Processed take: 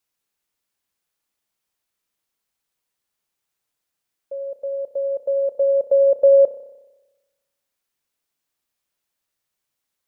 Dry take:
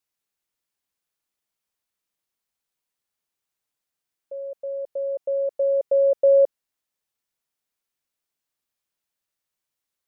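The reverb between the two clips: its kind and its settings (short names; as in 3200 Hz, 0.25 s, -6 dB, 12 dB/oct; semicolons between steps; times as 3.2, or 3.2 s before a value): spring tank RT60 1.1 s, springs 30 ms, chirp 75 ms, DRR 10.5 dB; gain +4 dB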